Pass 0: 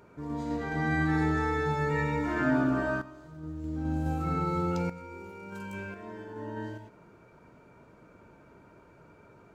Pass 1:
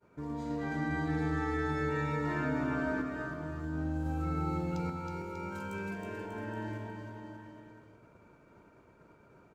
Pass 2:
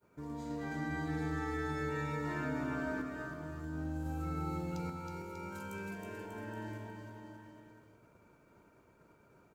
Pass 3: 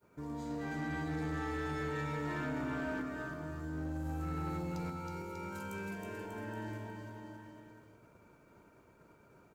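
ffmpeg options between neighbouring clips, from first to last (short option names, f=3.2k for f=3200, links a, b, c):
-filter_complex "[0:a]agate=range=-33dB:threshold=-49dB:ratio=3:detection=peak,acompressor=threshold=-36dB:ratio=2.5,asplit=2[a][b];[b]aecho=0:1:320|592|823.2|1020|1187:0.631|0.398|0.251|0.158|0.1[c];[a][c]amix=inputs=2:normalize=0"
-af "highshelf=f=6.9k:g=11.5,volume=-4.5dB"
-af "asoftclip=type=tanh:threshold=-33.5dB,volume=2dB"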